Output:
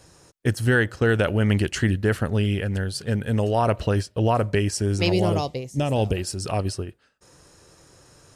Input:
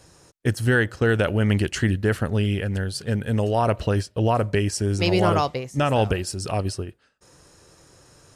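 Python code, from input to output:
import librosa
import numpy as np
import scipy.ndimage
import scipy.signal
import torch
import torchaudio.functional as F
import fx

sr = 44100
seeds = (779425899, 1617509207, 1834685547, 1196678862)

y = fx.peak_eq(x, sr, hz=1400.0, db=-14.5, octaves=1.2, at=(5.12, 6.17))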